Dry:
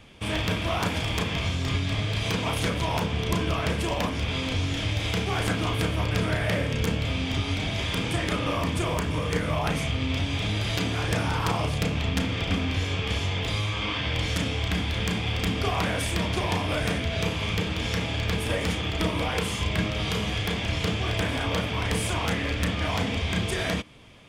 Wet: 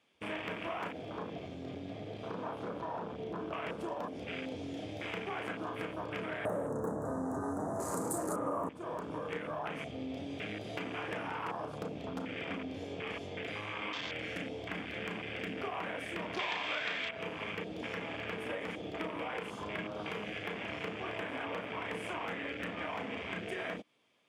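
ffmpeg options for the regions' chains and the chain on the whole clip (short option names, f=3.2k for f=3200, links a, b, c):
-filter_complex "[0:a]asettb=1/sr,asplit=3[a][b][c];[a]atrim=end=0.914[d];[b]atrim=start=0.91:end=3.53,asetpts=PTS-STARTPTS,afade=t=in:d=0.004:c=qsin,afade=t=out:st=2.616:d=0.004:c=qsin,asoftclip=type=hard:threshold=-24.5dB,highshelf=f=2.8k:g=-3.5,acrossover=split=4900[e][f];[f]acompressor=threshold=-53dB:ratio=4:attack=1:release=60[g];[e][g]amix=inputs=2:normalize=0[h];[c]atrim=start=3.526[i];[d][h]acrossfade=d=0.004:c1=hsin:c2=qsin[j];[j][i]acrossfade=d=0.004:c1=qsin:c2=hsin,asettb=1/sr,asplit=3[k][l][m];[k]atrim=end=6.454[n];[l]atrim=start=6.45:end=8.69,asetpts=PTS-STARTPTS,afade=t=in:d=0.004:c=qsin,afade=t=out:st=2.236:d=0.004:c=qsin,equalizer=f=9.4k:t=o:w=1.3:g=10,aeval=exprs='0.473*sin(PI/2*3.98*val(0)/0.473)':c=same,asuperstop=centerf=3100:order=8:qfactor=0.55[o];[m]atrim=start=8.686[p];[n][o]acrossfade=d=0.004:c1=hsin:c2=qsin[q];[q][p]acrossfade=d=0.004:c1=qsin:c2=hsin,asettb=1/sr,asplit=3[r][s][t];[r]atrim=end=16.394[u];[s]atrim=start=16.39:end=17.11,asetpts=PTS-STARTPTS,afade=t=in:d=0.004:c=qsin,afade=t=out:st=0.716:d=0.004:c=qsin,lowpass=4.9k,equalizer=f=2.1k:t=o:w=2.8:g=14[v];[t]atrim=start=17.106[w];[u][v]acrossfade=d=0.004:c1=hsin:c2=qsin[x];[x][w]acrossfade=d=0.004:c1=qsin:c2=hsin,afwtdn=0.0282,highpass=290,acompressor=threshold=-33dB:ratio=4,volume=-3dB"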